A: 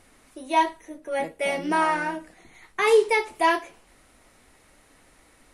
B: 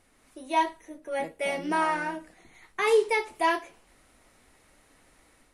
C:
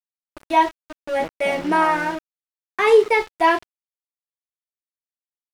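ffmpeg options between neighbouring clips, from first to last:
ffmpeg -i in.wav -af "dynaudnorm=framelen=150:gausssize=3:maxgain=4.5dB,volume=-8dB" out.wav
ffmpeg -i in.wav -af "anlmdn=0.00631,aeval=exprs='val(0)*gte(abs(val(0)),0.015)':channel_layout=same,aemphasis=mode=reproduction:type=50kf,volume=8.5dB" out.wav

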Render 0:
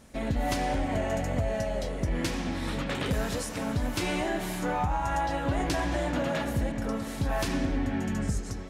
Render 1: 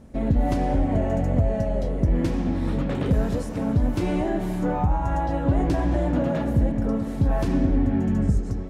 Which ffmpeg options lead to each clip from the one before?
ffmpeg -i in.wav -af "tiltshelf=frequency=970:gain=9" out.wav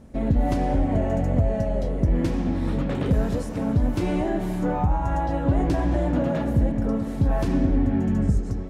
ffmpeg -i in.wav -af anull out.wav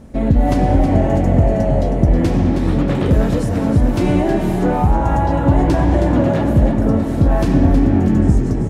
ffmpeg -i in.wav -filter_complex "[0:a]asplit=6[link_01][link_02][link_03][link_04][link_05][link_06];[link_02]adelay=318,afreqshift=42,volume=-8dB[link_07];[link_03]adelay=636,afreqshift=84,volume=-14.6dB[link_08];[link_04]adelay=954,afreqshift=126,volume=-21.1dB[link_09];[link_05]adelay=1272,afreqshift=168,volume=-27.7dB[link_10];[link_06]adelay=1590,afreqshift=210,volume=-34.2dB[link_11];[link_01][link_07][link_08][link_09][link_10][link_11]amix=inputs=6:normalize=0,volume=7.5dB" out.wav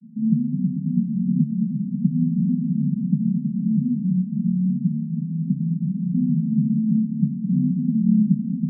ffmpeg -i in.wav -af "asuperpass=centerf=190:order=20:qfactor=1.8" out.wav

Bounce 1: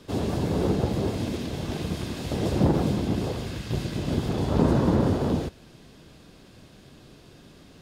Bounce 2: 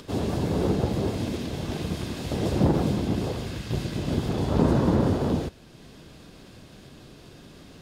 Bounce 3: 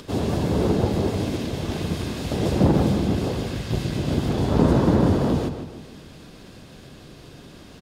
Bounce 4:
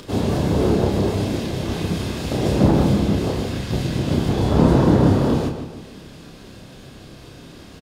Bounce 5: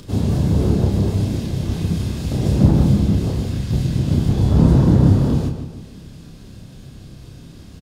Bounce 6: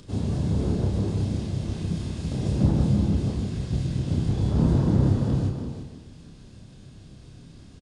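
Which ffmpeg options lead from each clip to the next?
ffmpeg -i in.wav -af "acompressor=mode=upward:threshold=-41dB:ratio=2.5" out.wav
ffmpeg -i in.wav -filter_complex "[0:a]asplit=2[link_01][link_02];[link_02]adelay=151,lowpass=frequency=4000:poles=1,volume=-8.5dB,asplit=2[link_03][link_04];[link_04]adelay=151,lowpass=frequency=4000:poles=1,volume=0.46,asplit=2[link_05][link_06];[link_06]adelay=151,lowpass=frequency=4000:poles=1,volume=0.46,asplit=2[link_07][link_08];[link_08]adelay=151,lowpass=frequency=4000:poles=1,volume=0.46,asplit=2[link_09][link_10];[link_10]adelay=151,lowpass=frequency=4000:poles=1,volume=0.46[link_11];[link_01][link_03][link_05][link_07][link_09][link_11]amix=inputs=6:normalize=0,volume=3dB" out.wav
ffmpeg -i in.wav -filter_complex "[0:a]asplit=2[link_01][link_02];[link_02]adelay=30,volume=-4dB[link_03];[link_01][link_03]amix=inputs=2:normalize=0,volume=1.5dB" out.wav
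ffmpeg -i in.wav -af "bass=frequency=250:gain=13,treble=frequency=4000:gain=6,volume=-7dB" out.wav
ffmpeg -i in.wav -filter_complex "[0:a]aresample=22050,aresample=44100,asplit=2[link_01][link_02];[link_02]aecho=0:1:341:0.398[link_03];[link_01][link_03]amix=inputs=2:normalize=0,volume=-8dB" out.wav

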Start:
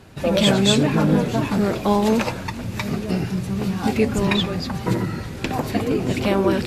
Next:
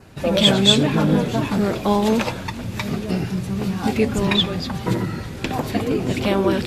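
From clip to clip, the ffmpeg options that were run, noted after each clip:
ffmpeg -i in.wav -af "adynamicequalizer=threshold=0.00891:dfrequency=3400:dqfactor=4.8:tfrequency=3400:tqfactor=4.8:attack=5:release=100:ratio=0.375:range=3.5:mode=boostabove:tftype=bell" out.wav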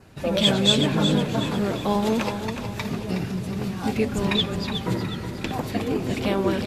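ffmpeg -i in.wav -af "aecho=1:1:367|734|1101|1468|1835:0.376|0.165|0.0728|0.032|0.0141,volume=-4.5dB" out.wav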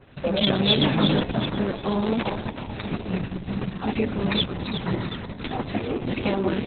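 ffmpeg -i in.wav -ar 48000 -c:a libopus -b:a 6k out.opus

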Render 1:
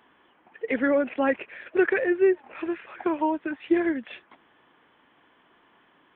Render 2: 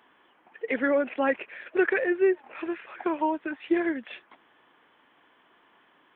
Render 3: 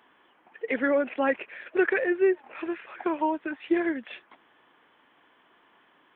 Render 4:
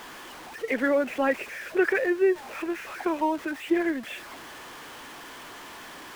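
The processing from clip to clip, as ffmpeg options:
ffmpeg -i in.wav -af "lowshelf=frequency=230:gain=-8" out.wav
ffmpeg -i in.wav -af anull out.wav
ffmpeg -i in.wav -af "aeval=exprs='val(0)+0.5*0.0126*sgn(val(0))':channel_layout=same" out.wav

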